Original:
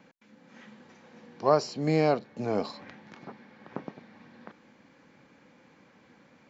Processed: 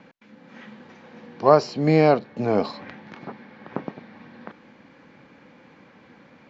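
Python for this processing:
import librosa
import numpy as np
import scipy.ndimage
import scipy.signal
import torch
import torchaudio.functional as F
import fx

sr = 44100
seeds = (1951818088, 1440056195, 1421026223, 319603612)

y = scipy.signal.sosfilt(scipy.signal.butter(2, 4300.0, 'lowpass', fs=sr, output='sos'), x)
y = F.gain(torch.from_numpy(y), 7.5).numpy()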